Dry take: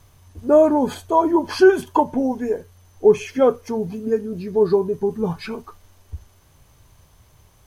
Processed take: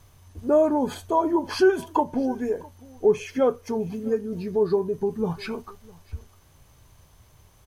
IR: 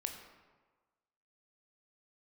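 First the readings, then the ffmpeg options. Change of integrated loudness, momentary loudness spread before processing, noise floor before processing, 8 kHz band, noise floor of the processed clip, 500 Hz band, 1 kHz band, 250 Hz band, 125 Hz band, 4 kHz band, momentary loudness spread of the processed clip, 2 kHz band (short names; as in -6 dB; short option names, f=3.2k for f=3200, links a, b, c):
-5.5 dB, 12 LU, -55 dBFS, n/a, -56 dBFS, -5.5 dB, -5.0 dB, -4.5 dB, -3.5 dB, -3.0 dB, 14 LU, -5.5 dB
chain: -filter_complex "[0:a]asplit=2[a][b];[b]acompressor=threshold=-23dB:ratio=6,volume=-0.5dB[c];[a][c]amix=inputs=2:normalize=0,aecho=1:1:655:0.0668,volume=-7.5dB"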